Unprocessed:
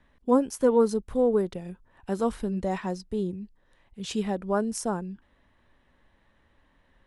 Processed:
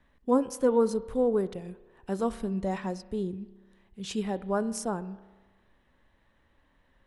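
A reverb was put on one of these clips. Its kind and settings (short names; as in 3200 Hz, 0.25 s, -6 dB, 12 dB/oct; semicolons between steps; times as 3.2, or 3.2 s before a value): spring tank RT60 1.3 s, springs 31 ms, chirp 35 ms, DRR 15.5 dB; gain -2.5 dB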